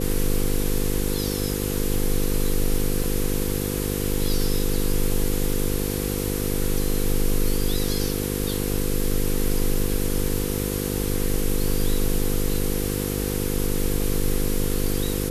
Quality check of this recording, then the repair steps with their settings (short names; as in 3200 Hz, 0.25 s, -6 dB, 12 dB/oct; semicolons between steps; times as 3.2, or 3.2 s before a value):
buzz 50 Hz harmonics 10 -27 dBFS
3.04 gap 3.6 ms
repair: de-hum 50 Hz, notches 10; interpolate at 3.04, 3.6 ms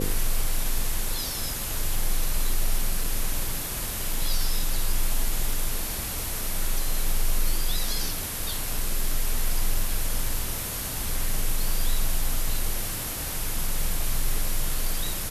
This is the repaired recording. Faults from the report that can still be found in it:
none